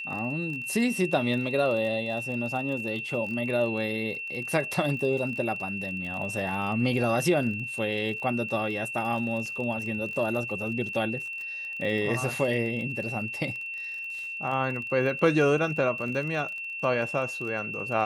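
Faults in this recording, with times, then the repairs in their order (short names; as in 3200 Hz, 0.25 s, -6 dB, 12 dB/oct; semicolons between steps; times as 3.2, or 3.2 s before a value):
crackle 30/s -35 dBFS
tone 2700 Hz -33 dBFS
9.46 gap 2.4 ms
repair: de-click; notch 2700 Hz, Q 30; interpolate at 9.46, 2.4 ms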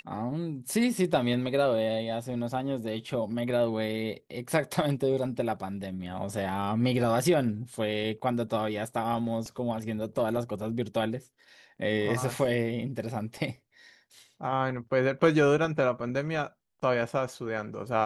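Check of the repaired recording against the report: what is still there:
none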